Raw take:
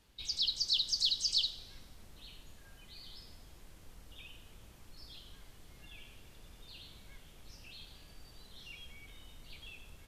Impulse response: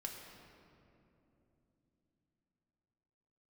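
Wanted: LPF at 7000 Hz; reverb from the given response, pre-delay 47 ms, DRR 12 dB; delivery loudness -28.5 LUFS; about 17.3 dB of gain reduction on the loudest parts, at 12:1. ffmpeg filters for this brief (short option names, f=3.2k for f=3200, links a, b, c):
-filter_complex "[0:a]lowpass=7k,acompressor=threshold=-45dB:ratio=12,asplit=2[a][b];[1:a]atrim=start_sample=2205,adelay=47[c];[b][c]afir=irnorm=-1:irlink=0,volume=-10dB[d];[a][d]amix=inputs=2:normalize=0,volume=23dB"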